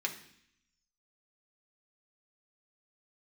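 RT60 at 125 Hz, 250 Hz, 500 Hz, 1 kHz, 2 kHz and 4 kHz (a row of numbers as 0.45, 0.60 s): 0.95, 0.90, 0.65, 0.70, 0.85, 0.85 s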